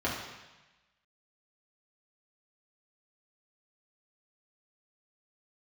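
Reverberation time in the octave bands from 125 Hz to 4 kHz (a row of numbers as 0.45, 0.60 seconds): 1.2, 1.1, 1.0, 1.1, 1.2, 1.2 seconds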